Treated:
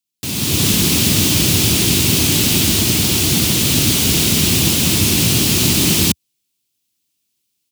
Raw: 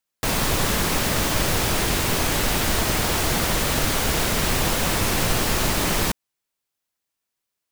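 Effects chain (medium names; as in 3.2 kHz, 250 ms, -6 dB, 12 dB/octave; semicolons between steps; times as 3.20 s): high-pass 79 Hz 24 dB/octave; high-order bell 960 Hz -15 dB 2.4 oct; level rider gain up to 11 dB; trim +1 dB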